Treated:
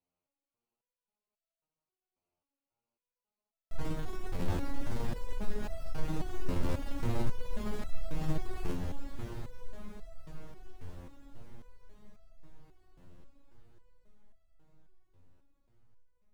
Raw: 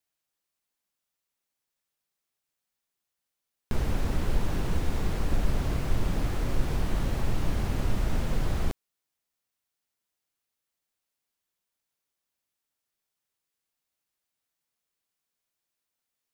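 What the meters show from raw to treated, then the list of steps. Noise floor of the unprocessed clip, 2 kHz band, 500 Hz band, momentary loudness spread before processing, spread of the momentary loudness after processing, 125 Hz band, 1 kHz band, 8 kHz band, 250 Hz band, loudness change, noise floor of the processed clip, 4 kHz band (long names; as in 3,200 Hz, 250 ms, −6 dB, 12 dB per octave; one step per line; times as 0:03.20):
below −85 dBFS, −8.0 dB, −4.5 dB, 2 LU, 17 LU, −7.5 dB, −6.0 dB, −9.0 dB, −5.0 dB, −8.5 dB, below −85 dBFS, −8.5 dB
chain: adaptive Wiener filter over 25 samples
brickwall limiter −23.5 dBFS, peak gain reduction 11 dB
soft clipping −31.5 dBFS, distortion −13 dB
feedback delay with all-pass diffusion 667 ms, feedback 67%, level −7.5 dB
step-sequenced resonator 3.7 Hz 88–660 Hz
level +15 dB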